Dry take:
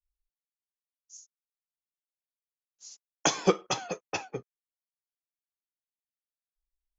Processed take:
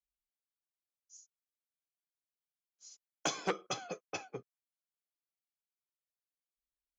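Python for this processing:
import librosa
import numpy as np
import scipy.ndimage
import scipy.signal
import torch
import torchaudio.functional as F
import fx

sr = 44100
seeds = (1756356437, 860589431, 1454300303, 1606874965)

y = fx.notch_comb(x, sr, f0_hz=920.0)
y = fx.transformer_sat(y, sr, knee_hz=1800.0)
y = y * 10.0 ** (-6.0 / 20.0)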